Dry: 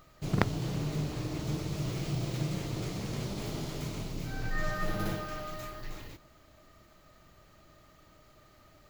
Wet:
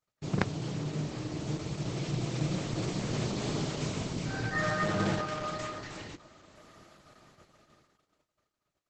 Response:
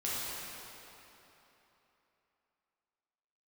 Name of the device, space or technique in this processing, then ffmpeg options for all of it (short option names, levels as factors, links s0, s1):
video call: -filter_complex "[0:a]asplit=3[s0][s1][s2];[s0]afade=t=out:st=3.66:d=0.02[s3];[s1]equalizer=f=300:t=o:w=0.36:g=-2,afade=t=in:st=3.66:d=0.02,afade=t=out:st=5.4:d=0.02[s4];[s2]afade=t=in:st=5.4:d=0.02[s5];[s3][s4][s5]amix=inputs=3:normalize=0,highpass=110,dynaudnorm=f=380:g=11:m=2.11,agate=range=0.0158:threshold=0.00158:ratio=16:detection=peak" -ar 48000 -c:a libopus -b:a 12k